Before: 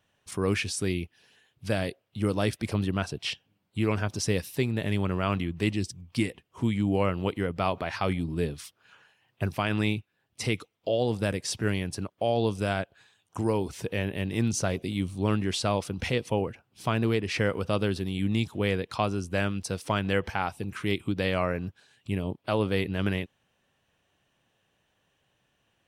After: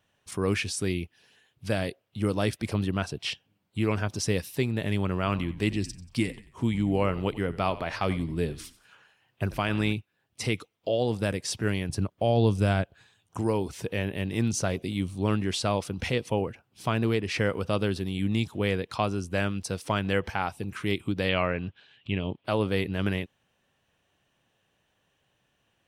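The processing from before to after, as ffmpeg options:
ffmpeg -i in.wav -filter_complex "[0:a]asettb=1/sr,asplit=3[link_01][link_02][link_03];[link_01]atrim=end=5.154[link_04];[link_02]atrim=start=5.15:end=9.93,asetpts=PTS-STARTPTS,afade=type=in:duration=0.004:curve=qsin,afade=type=out:start_time=4.776:duration=0.004:curve=qsin,asplit=4[link_05][link_06][link_07][link_08];[link_06]adelay=91,afreqshift=-58,volume=-16.5dB[link_09];[link_07]adelay=182,afreqshift=-116,volume=-25.4dB[link_10];[link_08]adelay=273,afreqshift=-174,volume=-34.2dB[link_11];[link_05][link_09][link_10][link_11]amix=inputs=4:normalize=0,atrim=end_sample=210798[link_12];[link_03]atrim=start=9.926[link_13];[link_04][link_12]acrossfade=duration=0.004:curve1=hsin:curve2=qsin[link_14];[link_14][link_13]acrossfade=duration=0.004:curve1=qsin:curve2=hsin,asettb=1/sr,asplit=3[link_15][link_16][link_17];[link_15]atrim=end=11.894[link_18];[link_16]atrim=start=11.89:end=13.38,asetpts=PTS-STARTPTS,afade=type=in:duration=0.004:curve=qsin,afade=type=out:start_time=1.486:duration=0.004:curve=qsin,lowshelf=frequency=190:gain=10.5[link_19];[link_17]atrim=start=13.376[link_20];[link_18][link_19]acrossfade=duration=0.004:curve1=hsin:curve2=qsin[link_21];[link_21][link_20]acrossfade=duration=0.004:curve1=qsin:curve2=hsin,asettb=1/sr,asplit=3[link_22][link_23][link_24];[link_22]atrim=end=21.294[link_25];[link_23]atrim=start=21.29:end=22.45,asetpts=PTS-STARTPTS,afade=type=in:duration=0.004:curve=qsin,afade=type=out:start_time=1.156:duration=0.004:curve=qsin,lowpass=frequency=3100:width_type=q:width=2.6[link_26];[link_24]atrim=start=22.446[link_27];[link_25][link_26]acrossfade=duration=0.004:curve1=hsin:curve2=qsin[link_28];[link_28][link_27]acrossfade=duration=0.004:curve1=qsin:curve2=hsin" out.wav

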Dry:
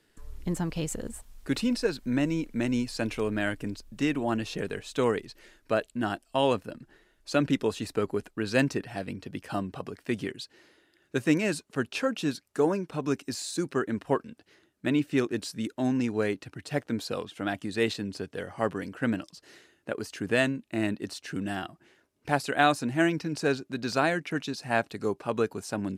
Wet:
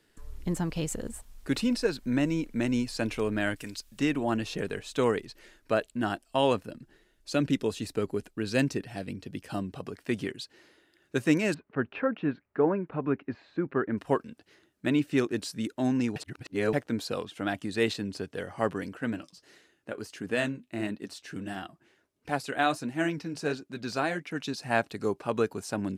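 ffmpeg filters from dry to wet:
ffmpeg -i in.wav -filter_complex "[0:a]asettb=1/sr,asplit=3[link_01][link_02][link_03];[link_01]atrim=end=3.564[link_04];[link_02]atrim=start=3.56:end=3.99,asetpts=PTS-STARTPTS,afade=type=in:duration=0.004:curve=qsin,afade=type=out:start_time=0.426:duration=0.004:curve=qsin,tiltshelf=frequency=1200:gain=-8.5[link_05];[link_03]atrim=start=3.986[link_06];[link_04][link_05]acrossfade=duration=0.004:curve1=hsin:curve2=qsin[link_07];[link_07][link_06]acrossfade=duration=0.004:curve1=qsin:curve2=hsin,asettb=1/sr,asplit=3[link_08][link_09][link_10];[link_08]atrim=end=6.674[link_11];[link_09]atrim=start=6.67:end=9.87,asetpts=PTS-STARTPTS,afade=type=in:duration=0.004:curve=qsin,afade=type=out:start_time=3.196:duration=0.004:curve=qsin,equalizer=frequency=1100:width=0.66:gain=-5.5[link_12];[link_10]atrim=start=9.866[link_13];[link_11][link_12]acrossfade=duration=0.004:curve1=hsin:curve2=qsin[link_14];[link_14][link_13]acrossfade=duration=0.004:curve1=qsin:curve2=hsin,asettb=1/sr,asplit=3[link_15][link_16][link_17];[link_15]atrim=end=11.544[link_18];[link_16]atrim=start=11.54:end=13.98,asetpts=PTS-STARTPTS,afade=type=in:duration=0.004:curve=qsin,afade=type=out:start_time=2.436:duration=0.004:curve=qsin,lowpass=frequency=2200:width=0.5412,lowpass=frequency=2200:width=1.3066[link_19];[link_17]atrim=start=13.976[link_20];[link_18][link_19]acrossfade=duration=0.004:curve1=hsin:curve2=qsin[link_21];[link_21][link_20]acrossfade=duration=0.004:curve1=qsin:curve2=hsin,asettb=1/sr,asplit=3[link_22][link_23][link_24];[link_22]atrim=end=18.974[link_25];[link_23]atrim=start=18.97:end=24.42,asetpts=PTS-STARTPTS,afade=type=in:duration=0.004:curve=qsin,afade=type=out:start_time=5.446:duration=0.004:curve=qsin,flanger=delay=3.8:depth=6.3:regen=-56:speed=1.5:shape=sinusoidal[link_26];[link_24]atrim=start=24.416[link_27];[link_25][link_26]acrossfade=duration=0.004:curve1=hsin:curve2=qsin[link_28];[link_28][link_27]acrossfade=duration=0.004:curve1=qsin:curve2=hsin,asplit=3[link_29][link_30][link_31];[link_29]atrim=end=16.162[link_32];[link_30]atrim=start=16.158:end=16.732,asetpts=PTS-STARTPTS,areverse[link_33];[link_31]atrim=start=16.728[link_34];[link_32][link_33]acrossfade=duration=0.004:curve1=hsin:curve2=hsin[link_35];[link_35][link_34]acrossfade=duration=0.004:curve1=hsin:curve2=hsin" out.wav

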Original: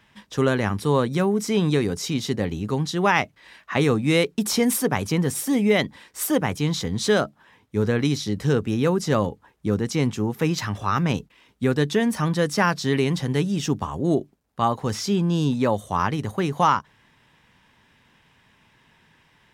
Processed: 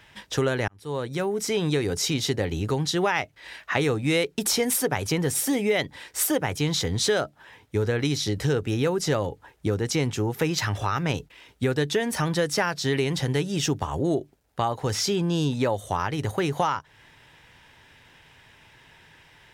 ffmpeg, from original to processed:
ffmpeg -i in.wav -filter_complex "[0:a]asplit=2[link_01][link_02];[link_01]atrim=end=0.68,asetpts=PTS-STARTPTS,afade=type=out:start_time=0.676:duration=0.004:curve=hsin[link_03];[link_02]atrim=start=0.68,asetpts=PTS-STARTPTS,afade=type=in:duration=1.26[link_04];[link_03][link_04]concat=n=2:v=0:a=1,equalizer=frequency=210:width=2:gain=-10.5,acompressor=threshold=-29dB:ratio=3,equalizer=frequency=1100:width=5.4:gain=-6.5,volume=6.5dB" out.wav

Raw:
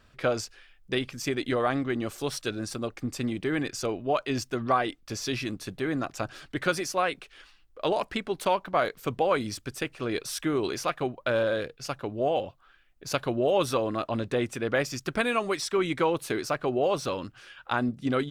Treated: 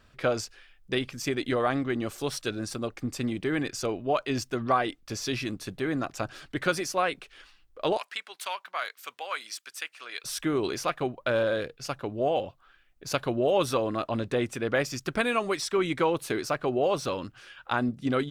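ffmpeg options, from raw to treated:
ffmpeg -i in.wav -filter_complex "[0:a]asettb=1/sr,asplit=3[link_01][link_02][link_03];[link_01]atrim=end=7.974[link_04];[link_02]atrim=start=7.97:end=10.24,asetpts=PTS-STARTPTS,afade=type=in:duration=0.004:curve=qsin,afade=type=out:start_time=2.266:duration=0.004:curve=qsin,highpass=1400[link_05];[link_03]atrim=start=10.236[link_06];[link_04][link_05]acrossfade=duration=0.004:curve1=hsin:curve2=qsin[link_07];[link_07][link_06]acrossfade=duration=0.004:curve1=qsin:curve2=hsin" out.wav

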